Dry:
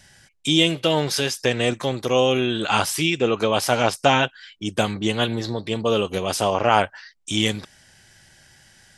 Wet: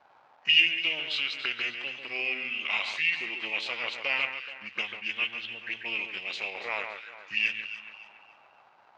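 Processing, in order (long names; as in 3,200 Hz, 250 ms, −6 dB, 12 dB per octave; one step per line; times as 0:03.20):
surface crackle 530 per second −33 dBFS
low-pass filter 5,700 Hz 12 dB per octave
in parallel at −11.5 dB: dead-zone distortion −32.5 dBFS
on the sum: formants moved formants −4 semitones
envelope filter 770–3,000 Hz, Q 3.1, up, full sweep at −19 dBFS
delay that swaps between a low-pass and a high-pass 142 ms, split 2,400 Hz, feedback 58%, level −6 dB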